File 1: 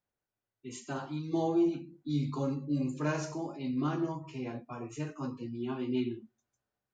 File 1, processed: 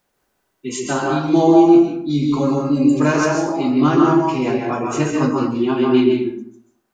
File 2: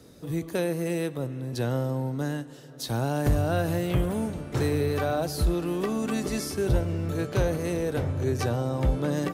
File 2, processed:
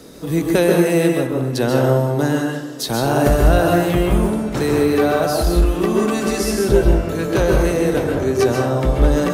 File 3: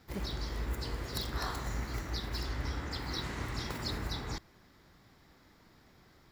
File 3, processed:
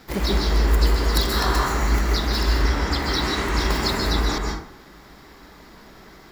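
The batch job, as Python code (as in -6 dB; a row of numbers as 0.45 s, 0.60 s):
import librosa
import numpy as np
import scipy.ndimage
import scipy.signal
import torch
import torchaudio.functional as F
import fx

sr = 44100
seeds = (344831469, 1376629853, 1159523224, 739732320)

y = fx.peak_eq(x, sr, hz=96.0, db=-14.0, octaves=0.73)
y = fx.rider(y, sr, range_db=10, speed_s=2.0)
y = fx.rev_plate(y, sr, seeds[0], rt60_s=0.62, hf_ratio=0.5, predelay_ms=120, drr_db=0.0)
y = y * 10.0 ** (-1.5 / 20.0) / np.max(np.abs(y))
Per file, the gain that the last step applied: +15.0 dB, +8.5 dB, +13.5 dB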